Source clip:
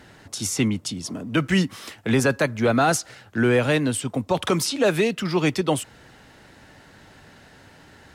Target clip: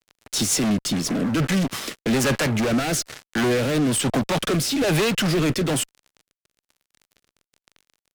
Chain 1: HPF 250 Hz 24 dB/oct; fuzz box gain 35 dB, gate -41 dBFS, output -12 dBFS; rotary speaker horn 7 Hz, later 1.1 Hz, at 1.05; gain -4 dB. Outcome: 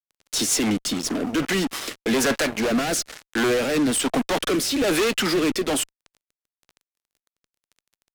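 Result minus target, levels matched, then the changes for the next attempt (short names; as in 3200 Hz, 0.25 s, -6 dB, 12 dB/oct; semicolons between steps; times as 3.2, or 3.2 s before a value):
125 Hz band -9.5 dB
change: HPF 120 Hz 24 dB/oct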